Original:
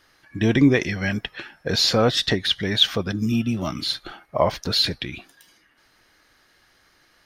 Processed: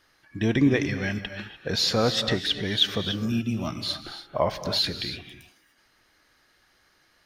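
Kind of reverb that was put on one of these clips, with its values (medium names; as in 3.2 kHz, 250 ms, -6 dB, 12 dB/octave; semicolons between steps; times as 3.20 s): gated-style reverb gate 320 ms rising, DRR 9 dB; trim -4.5 dB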